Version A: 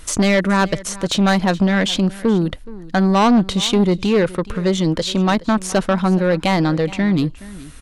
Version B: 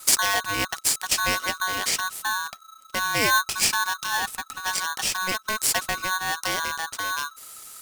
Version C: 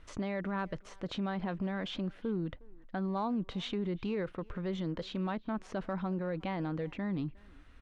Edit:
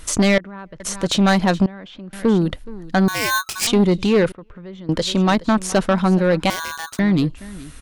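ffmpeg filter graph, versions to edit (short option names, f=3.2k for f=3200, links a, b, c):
-filter_complex "[2:a]asplit=3[a][b][c];[1:a]asplit=2[d][e];[0:a]asplit=6[f][g][h][i][j][k];[f]atrim=end=0.382[l];[a]atrim=start=0.378:end=0.802[m];[g]atrim=start=0.798:end=1.662[n];[b]atrim=start=1.658:end=2.132[o];[h]atrim=start=2.128:end=3.082[p];[d]atrim=start=3.078:end=3.672[q];[i]atrim=start=3.668:end=4.322[r];[c]atrim=start=4.318:end=4.892[s];[j]atrim=start=4.888:end=6.502[t];[e]atrim=start=6.498:end=6.992[u];[k]atrim=start=6.988[v];[l][m]acrossfade=d=0.004:c1=hsin:c2=hsin[w];[w][n]acrossfade=d=0.004:c1=hsin:c2=hsin[x];[x][o]acrossfade=d=0.004:c1=hsin:c2=hsin[y];[y][p]acrossfade=d=0.004:c1=hsin:c2=hsin[z];[z][q]acrossfade=d=0.004:c1=hsin:c2=hsin[aa];[aa][r]acrossfade=d=0.004:c1=hsin:c2=hsin[ab];[ab][s]acrossfade=d=0.004:c1=hsin:c2=hsin[ac];[ac][t]acrossfade=d=0.004:c1=hsin:c2=hsin[ad];[ad][u]acrossfade=d=0.004:c1=hsin:c2=hsin[ae];[ae][v]acrossfade=d=0.004:c1=hsin:c2=hsin"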